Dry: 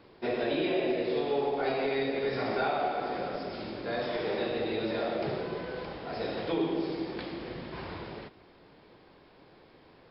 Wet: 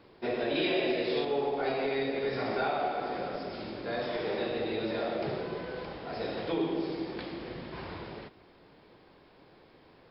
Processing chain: 0.55–1.25 high shelf 2000 Hz +9 dB; gain -1 dB

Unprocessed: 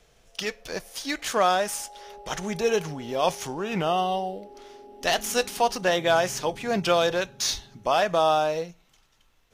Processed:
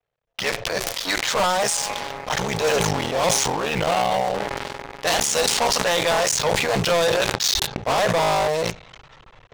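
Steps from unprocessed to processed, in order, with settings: cycle switcher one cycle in 3, muted; low-pass opened by the level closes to 2100 Hz, open at -22 dBFS; graphic EQ 125/250/500/1000/2000/4000/8000 Hz +8/-4/+8/+7/+6/+8/+12 dB; gate with hold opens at -52 dBFS; 5.75–6.33 low shelf 270 Hz -9 dB; sample leveller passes 5; notch 380 Hz, Q 12; sustainer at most 23 dB/s; gain -16.5 dB

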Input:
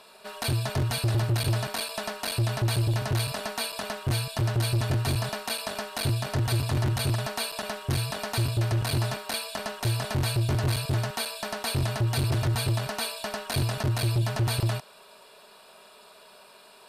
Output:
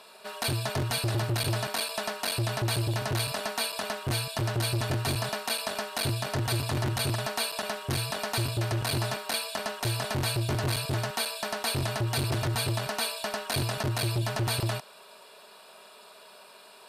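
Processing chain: low shelf 140 Hz -9 dB; gain +1 dB

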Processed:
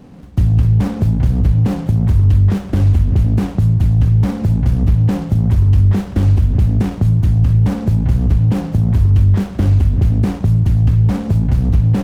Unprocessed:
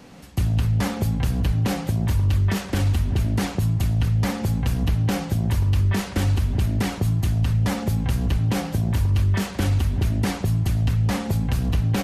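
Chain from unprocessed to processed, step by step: low shelf 460 Hz +11.5 dB; running maximum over 17 samples; gain -2 dB

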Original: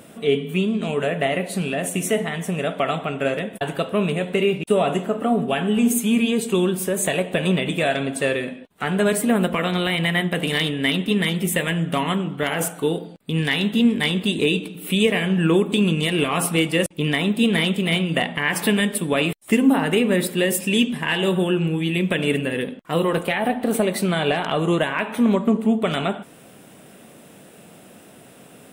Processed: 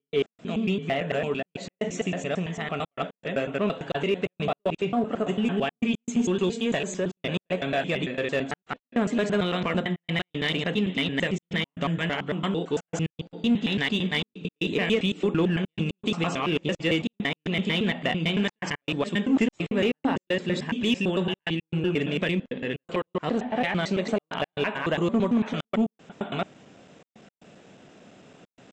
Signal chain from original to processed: slices in reverse order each 0.112 s, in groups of 4; downsampling 16000 Hz; in parallel at -4.5 dB: overloaded stage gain 15.5 dB; on the sum: step gate ".x.xxxxxxxx" 116 bpm -60 dB; gain -8.5 dB

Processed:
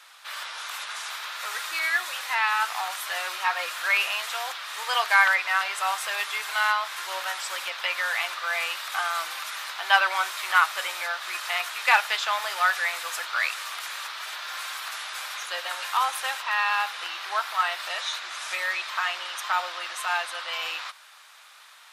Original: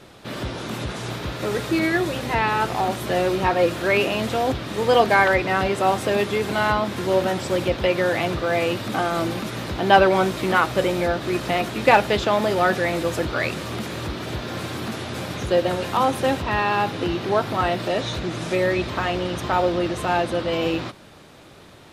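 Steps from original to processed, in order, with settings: HPF 1100 Hz 24 dB/oct; bell 2900 Hz -3.5 dB 2.7 oct; gain +4 dB

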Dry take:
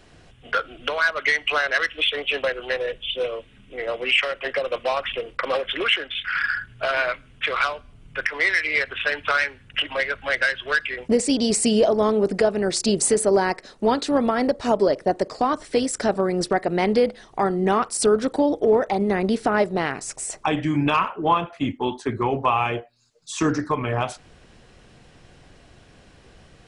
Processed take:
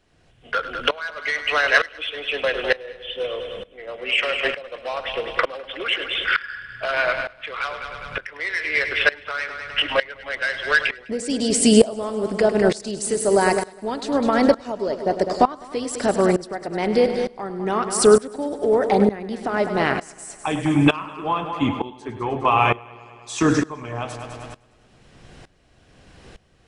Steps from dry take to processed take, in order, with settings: multi-head echo 0.102 s, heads first and second, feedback 54%, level -14 dB; dB-ramp tremolo swelling 1.1 Hz, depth 20 dB; gain +7 dB

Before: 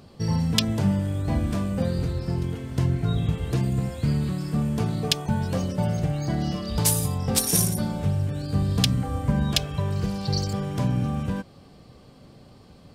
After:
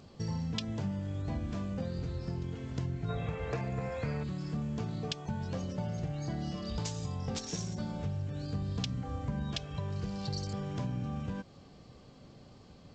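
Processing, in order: spectral gain 3.09–4.23, 420–2700 Hz +11 dB; compressor 2.5:1, threshold -30 dBFS, peak gain reduction 10 dB; gain -5 dB; G.722 64 kbps 16000 Hz

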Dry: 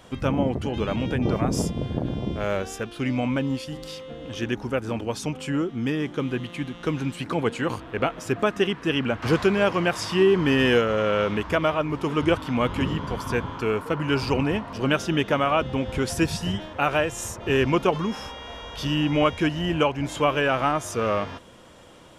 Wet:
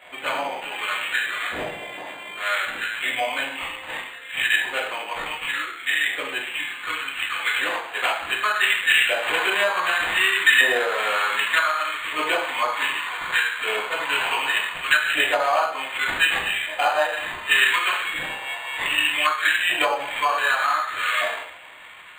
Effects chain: tracing distortion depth 0.05 ms; LFO high-pass saw up 0.66 Hz 670–1700 Hz; reverb, pre-delay 3 ms, DRR -8.5 dB; treble ducked by the level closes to 1300 Hz, closed at -9 dBFS; band shelf 2700 Hz +14.5 dB; decimation joined by straight lines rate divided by 8×; gain -9 dB

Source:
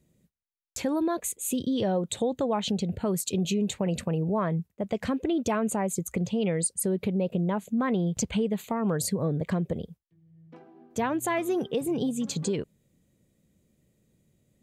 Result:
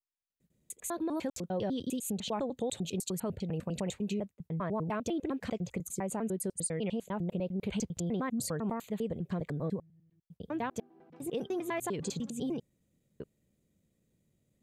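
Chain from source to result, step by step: slices in reverse order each 0.1 s, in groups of 7; gain -7 dB

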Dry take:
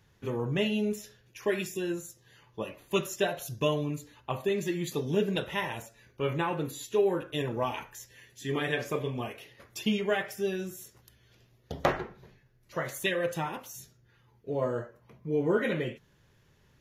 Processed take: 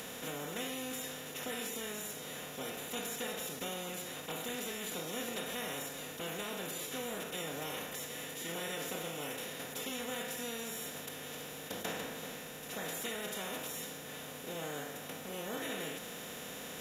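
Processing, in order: per-bin compression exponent 0.2; pre-emphasis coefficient 0.8; formant-preserving pitch shift +3.5 st; gain -8 dB

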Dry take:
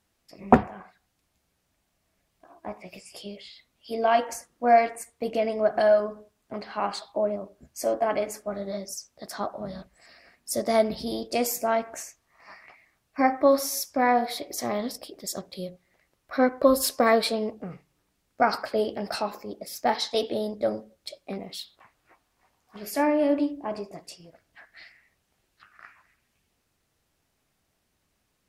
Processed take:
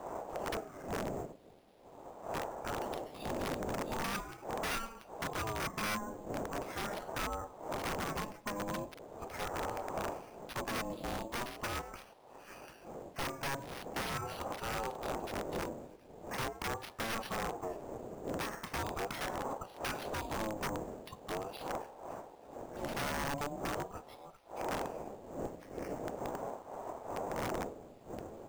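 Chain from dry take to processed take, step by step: octaver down 1 oct, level +2 dB; wind noise 250 Hz -34 dBFS; bell 7500 Hz +5 dB 0.95 oct; notches 60/120/180/240 Hz; compressor 6:1, threshold -27 dBFS, peak gain reduction 16.5 dB; added noise blue -54 dBFS; wrapped overs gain 24.5 dB; careless resampling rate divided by 6×, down filtered, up hold; ring modulator with a swept carrier 540 Hz, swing 25%, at 0.41 Hz; gain -2.5 dB

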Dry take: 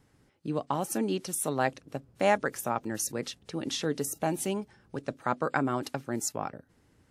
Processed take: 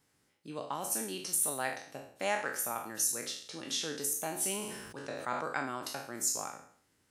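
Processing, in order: spectral trails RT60 0.56 s; tilt +2.5 dB/oct; 4.35–5.46 sustainer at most 38 dB/s; gain -8 dB

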